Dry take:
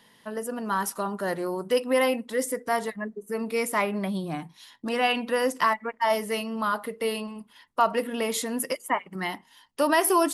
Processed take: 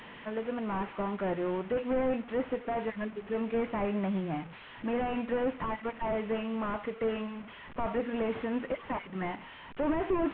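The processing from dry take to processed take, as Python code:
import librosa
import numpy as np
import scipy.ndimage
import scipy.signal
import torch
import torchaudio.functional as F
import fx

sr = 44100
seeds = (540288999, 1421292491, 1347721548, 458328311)

y = fx.delta_mod(x, sr, bps=16000, step_db=-39.0)
y = y * librosa.db_to_amplitude(-2.0)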